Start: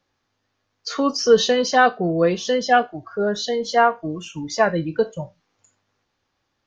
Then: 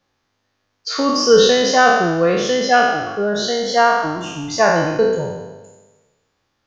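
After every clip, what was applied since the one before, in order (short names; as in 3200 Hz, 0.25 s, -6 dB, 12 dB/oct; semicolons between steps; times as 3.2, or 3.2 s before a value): spectral trails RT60 1.22 s; gain +1 dB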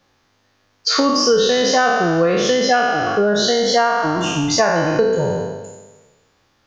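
compressor 5:1, threshold -22 dBFS, peak gain reduction 14 dB; gain +8.5 dB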